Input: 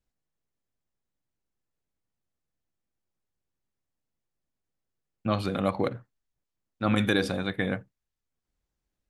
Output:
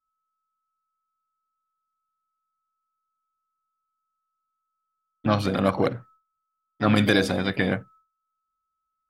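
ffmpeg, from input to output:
ffmpeg -i in.wav -filter_complex "[0:a]asplit=2[link_01][link_02];[link_02]asetrate=58866,aresample=44100,atempo=0.749154,volume=-11dB[link_03];[link_01][link_03]amix=inputs=2:normalize=0,aeval=exprs='val(0)+0.000891*sin(2*PI*1300*n/s)':channel_layout=same,agate=range=-33dB:threshold=-51dB:ratio=3:detection=peak,volume=4.5dB" out.wav

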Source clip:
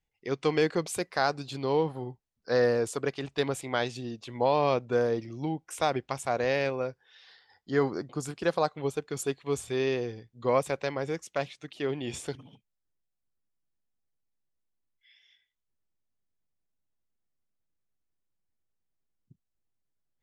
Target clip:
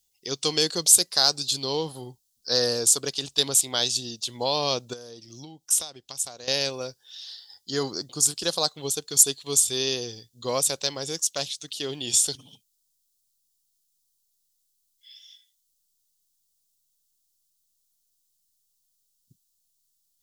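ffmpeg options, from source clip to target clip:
ffmpeg -i in.wav -filter_complex "[0:a]asettb=1/sr,asplit=3[link_01][link_02][link_03];[link_01]atrim=end=4.934[link_04];[link_02]atrim=start=4.93:end=6.48,asetpts=PTS-STARTPTS,afade=type=in:duration=0.004:curve=qsin,afade=type=out:start_time=1.546:duration=0.004:curve=qsin,acompressor=threshold=-38dB:ratio=12[link_05];[link_03]atrim=start=6.476[link_06];[link_04][link_05]acrossfade=duration=0.004:curve1=hsin:curve2=qsin[link_07];[link_07][link_06]acrossfade=duration=0.004:curve1=qsin:curve2=hsin,aexciter=amount=8.9:drive=8.1:freq=3300,volume=-2.5dB" out.wav

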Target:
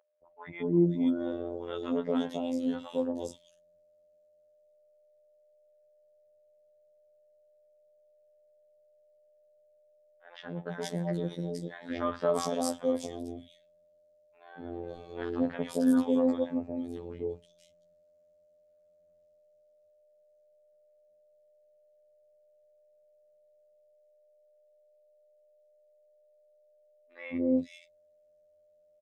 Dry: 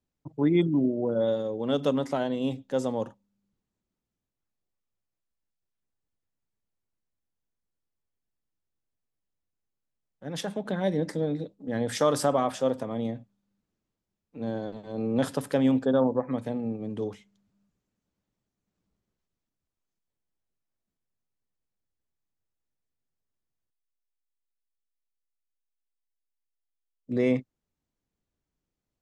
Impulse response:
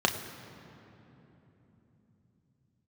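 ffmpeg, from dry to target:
-filter_complex "[0:a]aeval=exprs='val(0)+0.00447*sin(2*PI*570*n/s)':channel_layout=same,acrossover=split=800|3000[link_01][link_02][link_03];[link_01]adelay=230[link_04];[link_03]adelay=470[link_05];[link_04][link_02][link_05]amix=inputs=3:normalize=0,afftfilt=real='hypot(re,im)*cos(PI*b)':imag='0':win_size=2048:overlap=0.75"

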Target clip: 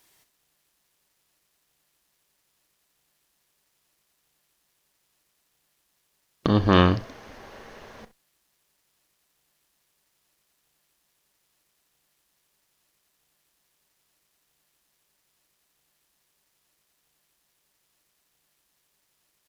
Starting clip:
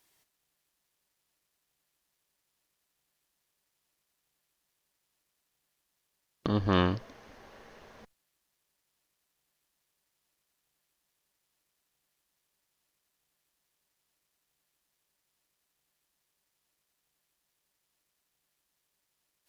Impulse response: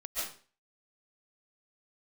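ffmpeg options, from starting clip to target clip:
-af "aecho=1:1:35|66:0.15|0.141,volume=8dB"

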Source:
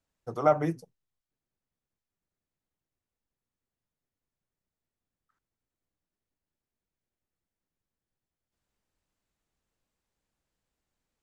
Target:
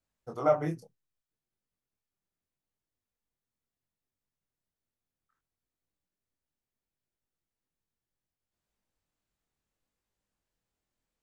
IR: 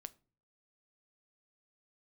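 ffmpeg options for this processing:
-af "flanger=delay=19.5:depth=6.2:speed=0.69"

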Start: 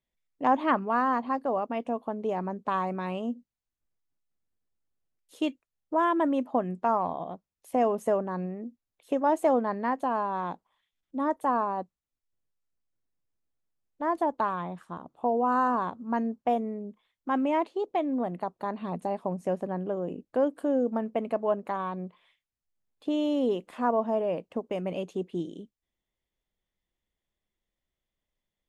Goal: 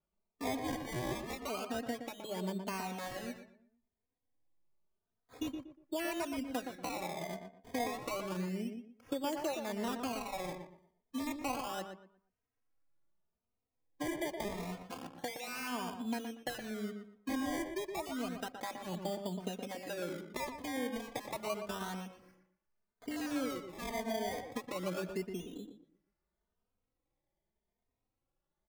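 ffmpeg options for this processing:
ffmpeg -i in.wav -filter_complex "[0:a]equalizer=frequency=1100:width=2.2:gain=-6.5,acrossover=split=1600[link_01][link_02];[link_01]acompressor=threshold=-37dB:ratio=4[link_03];[link_02]asoftclip=type=tanh:threshold=-38.5dB[link_04];[link_03][link_04]amix=inputs=2:normalize=0,acrusher=samples=22:mix=1:aa=0.000001:lfo=1:lforange=22:lforate=0.3,asplit=2[link_05][link_06];[link_06]adelay=119,lowpass=frequency=2100:poles=1,volume=-6dB,asplit=2[link_07][link_08];[link_08]adelay=119,lowpass=frequency=2100:poles=1,volume=0.29,asplit=2[link_09][link_10];[link_10]adelay=119,lowpass=frequency=2100:poles=1,volume=0.29,asplit=2[link_11][link_12];[link_12]adelay=119,lowpass=frequency=2100:poles=1,volume=0.29[link_13];[link_07][link_09][link_11][link_13]amix=inputs=4:normalize=0[link_14];[link_05][link_14]amix=inputs=2:normalize=0,asplit=2[link_15][link_16];[link_16]adelay=3,afreqshift=0.84[link_17];[link_15][link_17]amix=inputs=2:normalize=1,volume=2dB" out.wav

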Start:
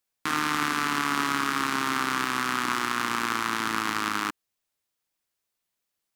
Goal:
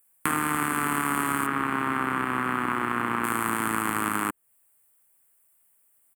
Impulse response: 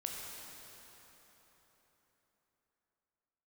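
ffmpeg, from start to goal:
-filter_complex "[0:a]acrossover=split=710|5700[link_01][link_02][link_03];[link_01]acompressor=threshold=-35dB:ratio=4[link_04];[link_02]acompressor=threshold=-35dB:ratio=4[link_05];[link_03]acompressor=threshold=-51dB:ratio=4[link_06];[link_04][link_05][link_06]amix=inputs=3:normalize=0,firequalizer=gain_entry='entry(1500,0);entry(2300,-2);entry(5500,-19);entry(8300,11)':delay=0.05:min_phase=1,asettb=1/sr,asplit=3[link_07][link_08][link_09];[link_07]atrim=end=1.464[link_10];[link_08]atrim=start=1.46:end=3.24,asetpts=PTS-STARTPTS,afade=type=in:duration=0.004:curve=qsin,afade=type=out:start_time=1.776:duration=0.004:curve=qsin,acrossover=split=3800[link_11][link_12];[link_12]acompressor=threshold=-54dB:ratio=4:attack=1:release=60[link_13];[link_11][link_13]amix=inputs=2:normalize=0[link_14];[link_09]atrim=start=3.236[link_15];[link_10][link_14]acrossfade=duration=0.004:curve1=hsin:curve2=qsin[link_16];[link_16][link_15]acrossfade=duration=0.004:curve1=qsin:curve2=hsin,equalizer=frequency=290:width=1.5:gain=-3,bandreject=frequency=3800:width=8.6,volume=9dB"

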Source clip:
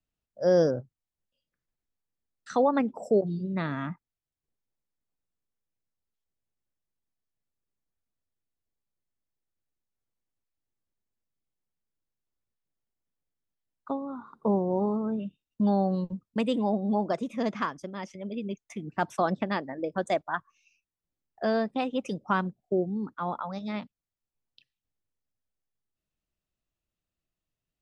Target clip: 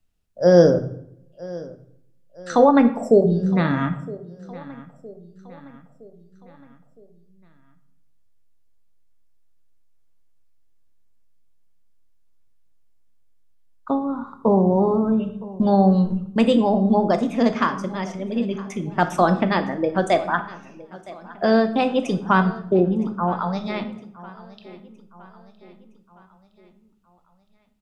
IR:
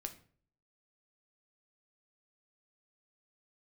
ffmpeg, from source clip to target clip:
-filter_complex "[0:a]asettb=1/sr,asplit=3[link_01][link_02][link_03];[link_01]atrim=end=22.794[link_04];[link_02]atrim=start=22.79:end=23.32,asetpts=PTS-STARTPTS,afade=type=in:duration=0.004:curve=qsin,afade=type=out:start_time=0.526:duration=0.004:curve=qsin,lowpass=frequency=1300:width=0.5412,lowpass=frequency=1300:width=1.3066[link_05];[link_03]atrim=start=23.316[link_06];[link_04][link_05]acrossfade=duration=0.004:curve1=hsin:curve2=qsin[link_07];[link_07][link_06]acrossfade=duration=0.004:curve1=qsin:curve2=hsin,aecho=1:1:964|1928|2892|3856:0.1|0.051|0.026|0.0133,asplit=2[link_08][link_09];[1:a]atrim=start_sample=2205,asetrate=26901,aresample=44100,lowshelf=frequency=77:gain=10[link_10];[link_09][link_10]afir=irnorm=-1:irlink=0,volume=8.5dB[link_11];[link_08][link_11]amix=inputs=2:normalize=0,volume=-2dB"

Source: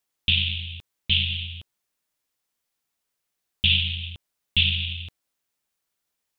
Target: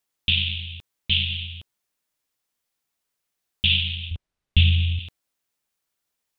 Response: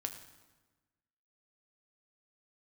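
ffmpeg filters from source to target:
-filter_complex "[0:a]asettb=1/sr,asplit=3[link_01][link_02][link_03];[link_01]atrim=end=4.114[link_04];[link_02]atrim=start=4.11:end=4.99,asetpts=PTS-STARTPTS,afade=type=in:duration=0.004:curve=qsin,afade=type=out:start_time=0.876:duration=0.004:curve=qsin,aemphasis=mode=reproduction:type=bsi[link_05];[link_03]atrim=start=4.986[link_06];[link_04][link_05]acrossfade=duration=0.004:curve1=hsin:curve2=qsin[link_07];[link_07][link_06]acrossfade=duration=0.004:curve1=qsin:curve2=hsin"

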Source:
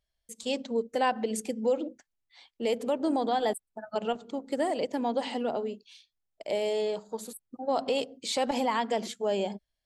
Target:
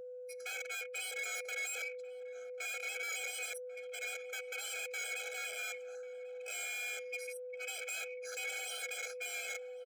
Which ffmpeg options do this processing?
ffmpeg -i in.wav -filter_complex "[0:a]afftfilt=real='real(if(lt(b,920),b+92*(1-2*mod(floor(b/92),2)),b),0)':imag='imag(if(lt(b,920),b+92*(1-2*mod(floor(b/92),2)),b),0)':win_size=2048:overlap=0.75,afwtdn=0.0282,areverse,acompressor=threshold=-36dB:ratio=12,areverse,alimiter=level_in=11dB:limit=-24dB:level=0:latency=1:release=19,volume=-11dB,aeval=exprs='val(0)+0.00141*sin(2*PI*500*n/s)':channel_layout=same,aeval=exprs='0.02*sin(PI/2*3.16*val(0)/0.02)':channel_layout=same,aeval=exprs='0.0211*(cos(1*acos(clip(val(0)/0.0211,-1,1)))-cos(1*PI/2))+0.00531*(cos(2*acos(clip(val(0)/0.0211,-1,1)))-cos(2*PI/2))+0.00299*(cos(4*acos(clip(val(0)/0.0211,-1,1)))-cos(4*PI/2))':channel_layout=same,asplit=2[link_01][link_02];[link_02]adelay=1092,lowpass=frequency=890:poles=1,volume=-11.5dB,asplit=2[link_03][link_04];[link_04]adelay=1092,lowpass=frequency=890:poles=1,volume=0.17[link_05];[link_01][link_03][link_05]amix=inputs=3:normalize=0,afftfilt=real='re*eq(mod(floor(b*sr/1024/430),2),1)':imag='im*eq(mod(floor(b*sr/1024/430),2),1)':win_size=1024:overlap=0.75,volume=-1dB" out.wav

